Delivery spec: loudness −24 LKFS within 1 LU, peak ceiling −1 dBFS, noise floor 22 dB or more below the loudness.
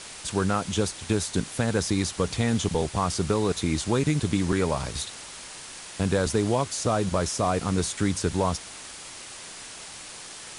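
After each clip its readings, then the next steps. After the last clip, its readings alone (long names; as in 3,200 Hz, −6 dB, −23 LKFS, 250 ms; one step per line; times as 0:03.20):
background noise floor −42 dBFS; target noise floor −48 dBFS; integrated loudness −26.0 LKFS; sample peak −11.0 dBFS; target loudness −24.0 LKFS
→ broadband denoise 6 dB, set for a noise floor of −42 dBFS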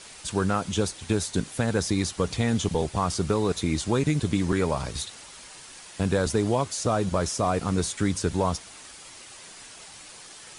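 background noise floor −46 dBFS; target noise floor −49 dBFS
→ broadband denoise 6 dB, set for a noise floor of −46 dBFS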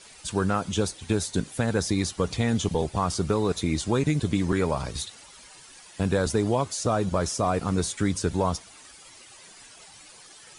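background noise floor −50 dBFS; integrated loudness −26.5 LKFS; sample peak −11.5 dBFS; target loudness −24.0 LKFS
→ level +2.5 dB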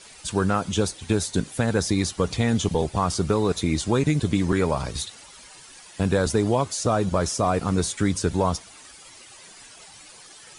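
integrated loudness −24.0 LKFS; sample peak −9.0 dBFS; background noise floor −47 dBFS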